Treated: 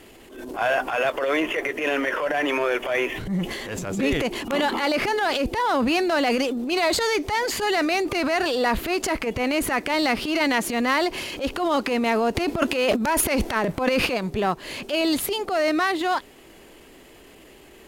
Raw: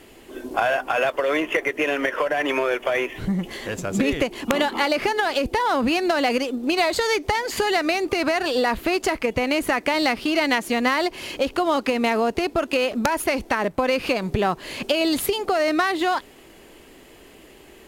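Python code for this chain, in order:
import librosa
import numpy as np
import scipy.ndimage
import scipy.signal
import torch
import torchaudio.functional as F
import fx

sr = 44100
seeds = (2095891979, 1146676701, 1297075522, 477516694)

y = fx.transient(x, sr, attack_db=-11, sustain_db=fx.steps((0.0, 6.0), (12.34, 12.0), (14.06, -1.0)))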